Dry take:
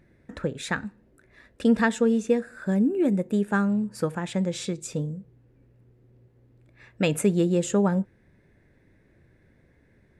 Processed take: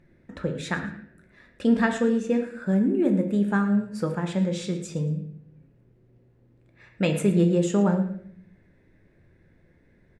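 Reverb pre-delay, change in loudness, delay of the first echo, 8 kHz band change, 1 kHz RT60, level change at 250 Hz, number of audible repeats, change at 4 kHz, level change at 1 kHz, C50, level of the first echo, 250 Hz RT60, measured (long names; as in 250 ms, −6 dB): 5 ms, +1.0 dB, 112 ms, −4.5 dB, 0.55 s, +1.0 dB, 2, −1.5 dB, −0.5 dB, 8.0 dB, −14.5 dB, 0.95 s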